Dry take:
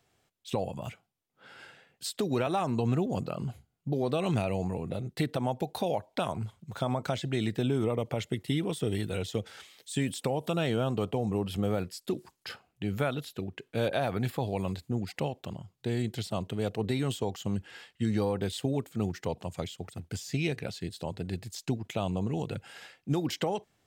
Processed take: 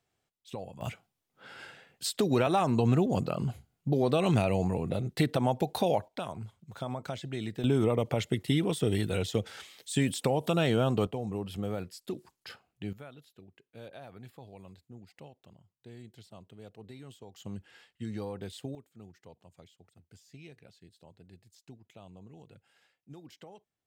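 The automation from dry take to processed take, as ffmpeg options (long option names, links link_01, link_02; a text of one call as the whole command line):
ffmpeg -i in.wav -af "asetnsamples=nb_out_samples=441:pad=0,asendcmd='0.81 volume volume 3dB;6.08 volume volume -6dB;7.64 volume volume 2.5dB;11.07 volume volume -5dB;12.93 volume volume -18dB;17.36 volume volume -9dB;18.75 volume volume -20dB',volume=-9dB" out.wav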